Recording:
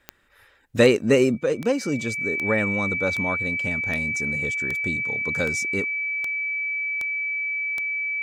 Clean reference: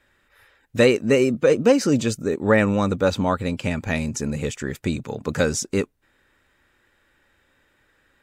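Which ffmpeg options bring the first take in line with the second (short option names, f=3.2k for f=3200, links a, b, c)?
-af "adeclick=t=4,bandreject=f=2.3k:w=30,asetnsamples=n=441:p=0,asendcmd='1.38 volume volume 6.5dB',volume=0dB"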